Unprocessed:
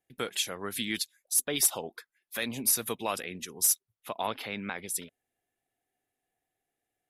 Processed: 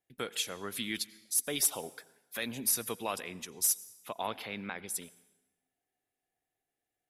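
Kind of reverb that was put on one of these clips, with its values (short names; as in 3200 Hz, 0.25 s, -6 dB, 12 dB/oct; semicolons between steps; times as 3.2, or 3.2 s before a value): plate-style reverb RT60 1.1 s, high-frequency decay 0.85×, pre-delay 75 ms, DRR 19.5 dB; gain -3.5 dB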